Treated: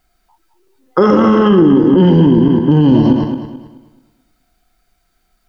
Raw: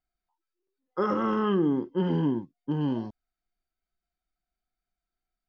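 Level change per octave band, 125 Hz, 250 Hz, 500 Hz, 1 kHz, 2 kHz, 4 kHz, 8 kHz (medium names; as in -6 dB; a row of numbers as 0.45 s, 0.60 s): +19.0 dB, +18.5 dB, +17.0 dB, +14.0 dB, +14.0 dB, +17.0 dB, no reading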